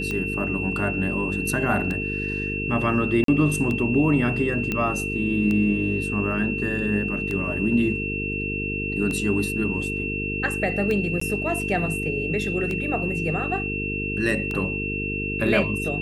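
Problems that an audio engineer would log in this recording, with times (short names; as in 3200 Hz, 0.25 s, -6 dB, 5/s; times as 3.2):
buzz 50 Hz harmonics 9 -30 dBFS
tick 33 1/3 rpm -16 dBFS
tone 2700 Hz -28 dBFS
3.24–3.28 gap 43 ms
4.72 pop -12 dBFS
11.2–11.21 gap 14 ms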